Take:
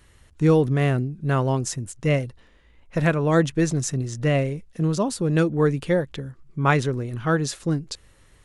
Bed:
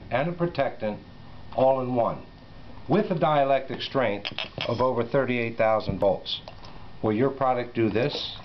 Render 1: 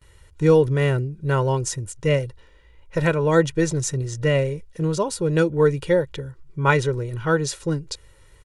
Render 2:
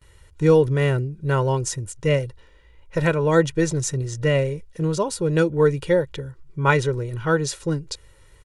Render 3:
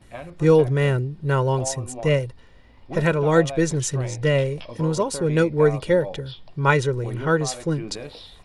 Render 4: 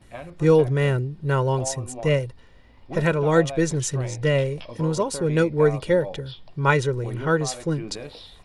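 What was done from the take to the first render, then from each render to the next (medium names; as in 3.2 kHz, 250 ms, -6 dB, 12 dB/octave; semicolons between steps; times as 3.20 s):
comb 2.1 ms, depth 67%; gate with hold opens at -46 dBFS
no audible change
add bed -11.5 dB
trim -1 dB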